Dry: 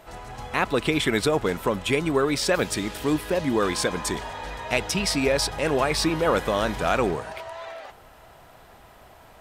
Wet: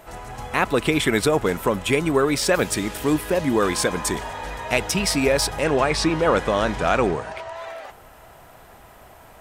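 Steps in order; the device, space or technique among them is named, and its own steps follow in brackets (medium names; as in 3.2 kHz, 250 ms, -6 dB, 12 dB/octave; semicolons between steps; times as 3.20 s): exciter from parts (in parallel at -5 dB: high-pass 2.7 kHz 12 dB/octave + saturation -22 dBFS, distortion -15 dB + high-pass 4.4 kHz 12 dB/octave); 5.64–7.56 s: on the sum: low-pass 6.9 kHz 12 dB/octave; trim +3 dB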